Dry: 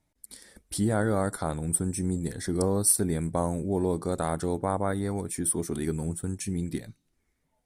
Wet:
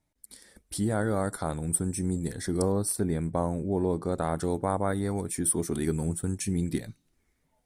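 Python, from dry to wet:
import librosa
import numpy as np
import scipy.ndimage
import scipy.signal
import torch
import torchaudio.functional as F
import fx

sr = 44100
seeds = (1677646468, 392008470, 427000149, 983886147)

y = fx.high_shelf(x, sr, hz=4100.0, db=-9.5, at=(2.72, 4.36))
y = fx.rider(y, sr, range_db=10, speed_s=2.0)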